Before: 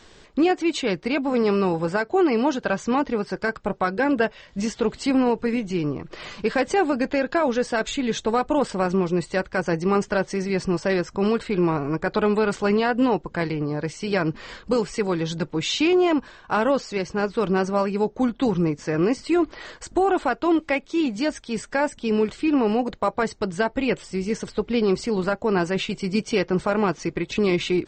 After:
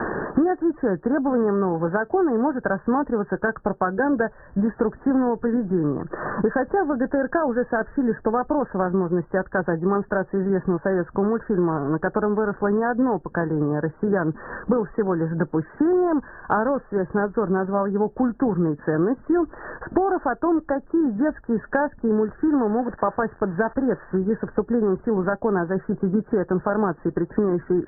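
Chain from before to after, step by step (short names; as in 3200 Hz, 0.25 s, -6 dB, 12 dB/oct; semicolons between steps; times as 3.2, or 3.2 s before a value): 22.42–24.17 switching spikes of -18 dBFS; Chebyshev low-pass 1800 Hz, order 10; three-band squash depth 100%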